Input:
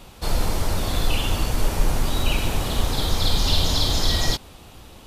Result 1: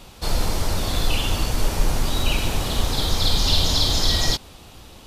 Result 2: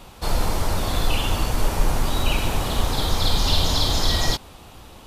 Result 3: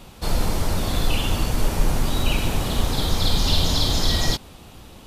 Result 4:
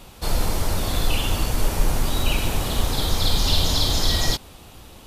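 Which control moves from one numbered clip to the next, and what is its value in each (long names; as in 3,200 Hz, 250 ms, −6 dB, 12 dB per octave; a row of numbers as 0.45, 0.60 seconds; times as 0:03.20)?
parametric band, centre frequency: 5,000, 980, 190, 14,000 Hertz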